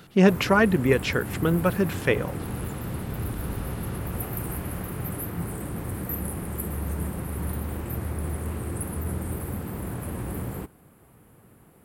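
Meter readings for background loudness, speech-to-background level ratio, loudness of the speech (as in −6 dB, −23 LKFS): −32.5 LKFS, 9.5 dB, −23.0 LKFS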